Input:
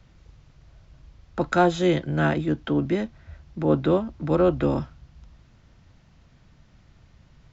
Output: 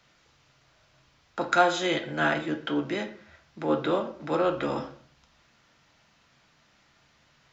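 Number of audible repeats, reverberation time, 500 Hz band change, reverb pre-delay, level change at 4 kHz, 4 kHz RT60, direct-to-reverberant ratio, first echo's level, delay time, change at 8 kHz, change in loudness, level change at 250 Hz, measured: none, 0.50 s, -4.0 dB, 3 ms, +3.5 dB, 0.35 s, 4.0 dB, none, none, n/a, -4.0 dB, -7.0 dB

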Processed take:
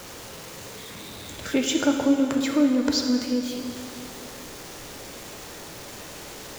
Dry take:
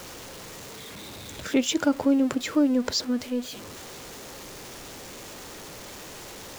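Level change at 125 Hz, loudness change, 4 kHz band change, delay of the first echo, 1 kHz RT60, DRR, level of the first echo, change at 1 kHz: +2.5 dB, +1.0 dB, +2.0 dB, none, 2.3 s, 3.0 dB, none, +1.5 dB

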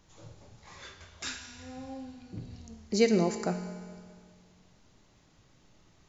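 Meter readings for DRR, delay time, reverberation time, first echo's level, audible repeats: 7.5 dB, none, 2.0 s, none, none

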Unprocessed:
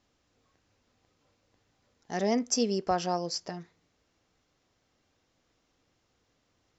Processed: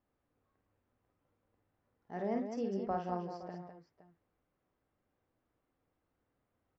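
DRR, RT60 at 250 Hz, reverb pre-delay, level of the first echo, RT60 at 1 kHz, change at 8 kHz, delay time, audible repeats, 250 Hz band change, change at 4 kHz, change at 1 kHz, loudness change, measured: none, none, none, -5.0 dB, none, n/a, 51 ms, 3, -7.0 dB, -25.5 dB, -7.5 dB, -9.0 dB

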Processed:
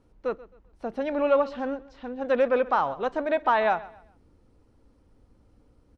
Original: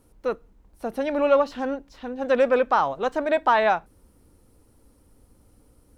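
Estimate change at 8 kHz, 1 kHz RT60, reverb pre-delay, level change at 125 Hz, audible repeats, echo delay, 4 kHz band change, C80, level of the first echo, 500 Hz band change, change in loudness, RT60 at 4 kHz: n/a, none, none, -2.5 dB, 2, 0.132 s, -5.0 dB, none, -19.0 dB, -3.0 dB, -3.0 dB, none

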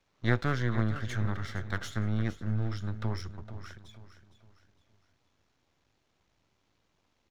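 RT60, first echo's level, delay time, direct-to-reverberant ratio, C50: none, -13.0 dB, 0.461 s, none, none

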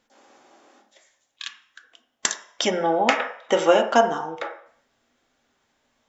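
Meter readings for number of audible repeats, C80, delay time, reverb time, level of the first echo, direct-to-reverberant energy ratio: none, 13.0 dB, none, 0.60 s, none, 3.5 dB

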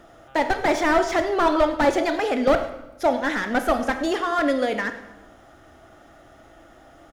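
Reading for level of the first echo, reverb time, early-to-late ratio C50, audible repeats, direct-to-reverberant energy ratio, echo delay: -17.0 dB, 0.95 s, 9.5 dB, 1, 7.5 dB, 0.102 s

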